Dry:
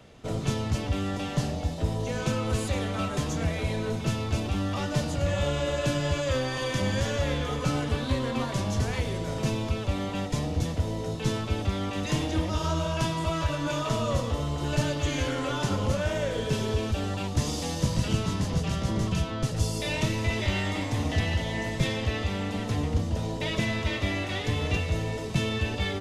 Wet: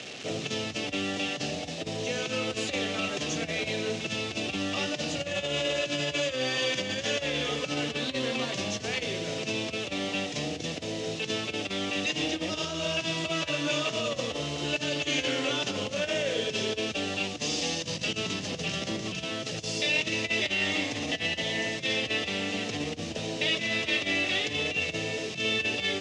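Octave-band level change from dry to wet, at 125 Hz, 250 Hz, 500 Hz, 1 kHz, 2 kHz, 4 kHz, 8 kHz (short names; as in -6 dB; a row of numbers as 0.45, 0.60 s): -12.5, -3.5, -0.5, -4.5, +4.5, +6.0, +2.0 dB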